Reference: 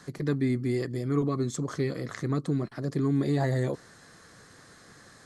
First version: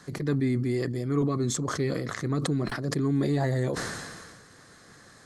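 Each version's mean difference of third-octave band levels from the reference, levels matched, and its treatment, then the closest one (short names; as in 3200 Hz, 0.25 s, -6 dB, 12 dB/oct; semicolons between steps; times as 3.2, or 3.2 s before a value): 3.0 dB: sustainer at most 33 dB/s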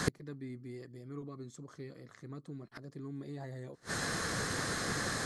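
12.0 dB: flipped gate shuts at -34 dBFS, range -35 dB; gain +17.5 dB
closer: first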